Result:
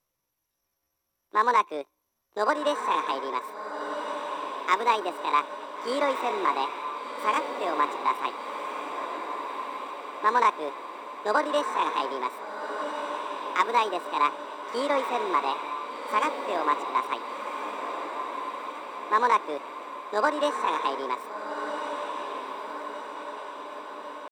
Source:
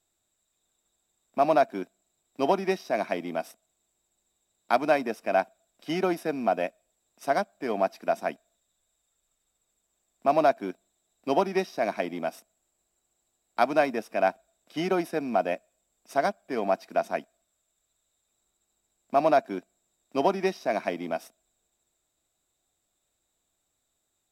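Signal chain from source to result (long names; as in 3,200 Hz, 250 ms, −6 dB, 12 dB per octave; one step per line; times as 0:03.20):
high-shelf EQ 6,000 Hz −8 dB
pitch shifter +7.5 semitones
on a send: feedback delay with all-pass diffusion 1,453 ms, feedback 61%, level −6.5 dB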